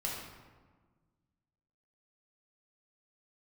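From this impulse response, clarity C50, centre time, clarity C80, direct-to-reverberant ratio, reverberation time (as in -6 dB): 1.0 dB, 66 ms, 3.5 dB, -4.0 dB, 1.5 s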